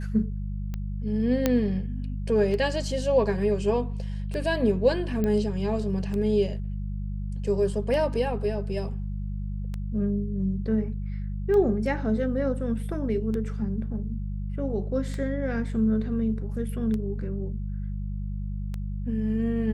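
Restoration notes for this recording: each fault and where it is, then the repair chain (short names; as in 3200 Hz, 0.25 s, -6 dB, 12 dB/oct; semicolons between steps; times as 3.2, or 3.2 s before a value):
hum 50 Hz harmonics 4 -31 dBFS
tick 33 1/3 rpm -21 dBFS
1.46 pop -8 dBFS
5.24 pop -16 dBFS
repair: de-click; de-hum 50 Hz, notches 4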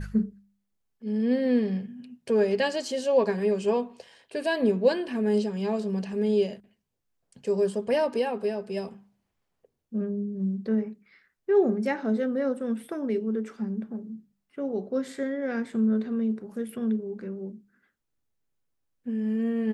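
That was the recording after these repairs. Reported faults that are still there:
none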